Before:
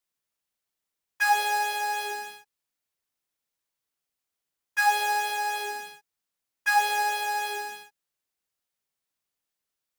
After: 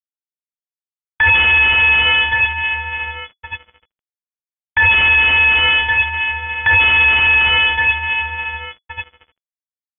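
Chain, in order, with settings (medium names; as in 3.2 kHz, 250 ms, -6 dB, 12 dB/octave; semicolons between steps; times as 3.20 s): feedback delay 1112 ms, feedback 33%, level -16.5 dB; fuzz box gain 40 dB, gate -45 dBFS; frequency inversion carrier 3.4 kHz; trim +3.5 dB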